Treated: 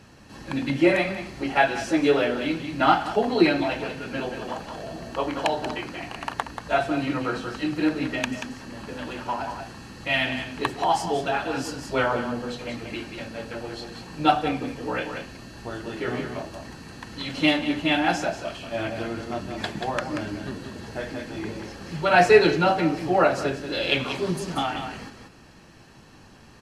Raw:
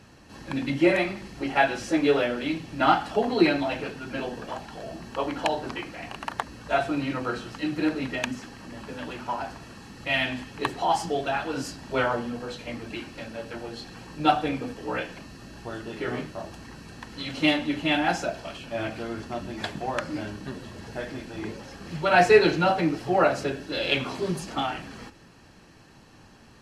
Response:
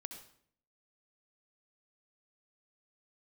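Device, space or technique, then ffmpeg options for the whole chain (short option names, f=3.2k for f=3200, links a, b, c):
ducked delay: -filter_complex "[0:a]asplit=3[a][b][c];[b]adelay=184,volume=-6dB[d];[c]apad=whole_len=1181997[e];[d][e]sidechaincompress=threshold=-25dB:ratio=8:attack=16:release=689[f];[a][f]amix=inputs=2:normalize=0,volume=1.5dB"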